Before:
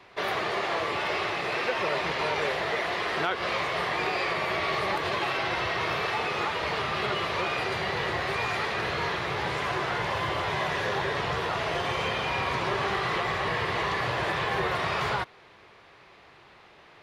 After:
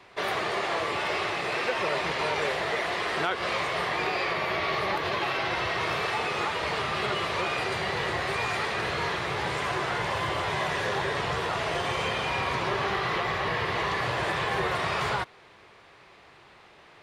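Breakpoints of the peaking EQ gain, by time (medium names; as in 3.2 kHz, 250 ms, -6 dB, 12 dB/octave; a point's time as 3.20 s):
peaking EQ 8.3 kHz 0.58 oct
3.64 s +6.5 dB
4.38 s -3.5 dB
5.14 s -3.5 dB
5.92 s +7 dB
12.24 s +7 dB
12.94 s -2 dB
13.57 s -2 dB
14.21 s +6 dB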